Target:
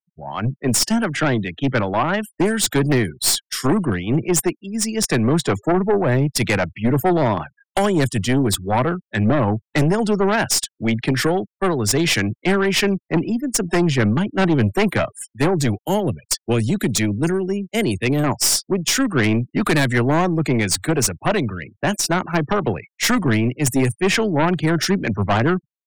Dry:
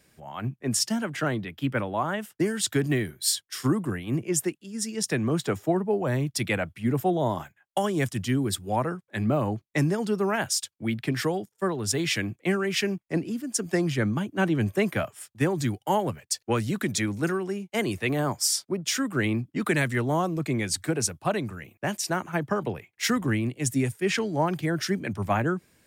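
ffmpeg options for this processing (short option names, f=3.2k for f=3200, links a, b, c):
-filter_complex "[0:a]asettb=1/sr,asplit=3[a][b][c];[a]atrim=end=15.804[d];[b]atrim=start=15.8:end=18.24,asetpts=PTS-STARTPTS,afade=t=in:d=0.004:c=qsin,afade=t=out:st=2.436:d=0.004:c=qsin,equalizer=f=1.1k:t=o:w=1.3:g=-13[e];[c]atrim=start=18.236[f];[d][e]acrossfade=d=0.004:c1=hsin:c2=qsin[g];[g][f]acrossfade=d=0.004:c1=qsin:c2=hsin,afftfilt=real='re*gte(hypot(re,im),0.00631)':imag='im*gte(hypot(re,im),0.00631)':win_size=1024:overlap=0.75,aeval=exprs='0.266*(cos(1*acos(clip(val(0)/0.266,-1,1)))-cos(1*PI/2))+0.0596*(cos(4*acos(clip(val(0)/0.266,-1,1)))-cos(4*PI/2))+0.0841*(cos(5*acos(clip(val(0)/0.266,-1,1)))-cos(5*PI/2))':c=same,volume=2dB"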